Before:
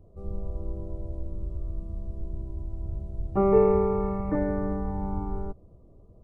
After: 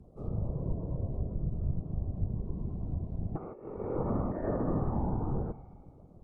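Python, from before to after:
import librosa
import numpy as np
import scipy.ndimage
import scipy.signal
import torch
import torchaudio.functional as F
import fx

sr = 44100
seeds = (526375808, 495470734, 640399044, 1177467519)

y = fx.rev_spring(x, sr, rt60_s=2.1, pass_ms=(47,), chirp_ms=30, drr_db=13.0)
y = fx.over_compress(y, sr, threshold_db=-28.0, ratio=-0.5)
y = fx.whisperise(y, sr, seeds[0])
y = fx.env_lowpass_down(y, sr, base_hz=1200.0, full_db=-25.0)
y = F.gain(torch.from_numpy(y), -2.5).numpy()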